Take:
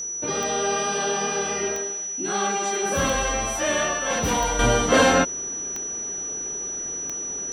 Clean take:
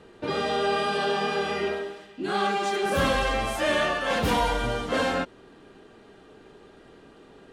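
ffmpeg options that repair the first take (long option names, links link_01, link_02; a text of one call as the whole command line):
ffmpeg -i in.wav -af "adeclick=threshold=4,bandreject=frequency=5900:width=30,asetnsamples=nb_out_samples=441:pad=0,asendcmd='4.59 volume volume -8.5dB',volume=0dB" out.wav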